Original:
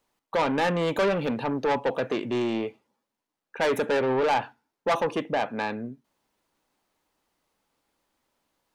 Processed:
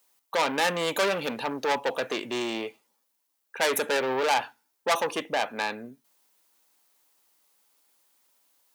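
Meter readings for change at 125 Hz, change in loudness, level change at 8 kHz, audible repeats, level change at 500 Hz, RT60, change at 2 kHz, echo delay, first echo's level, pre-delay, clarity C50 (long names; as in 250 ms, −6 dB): −10.0 dB, −1.0 dB, +11.0 dB, no echo audible, −2.5 dB, no reverb audible, +2.5 dB, no echo audible, no echo audible, no reverb audible, no reverb audible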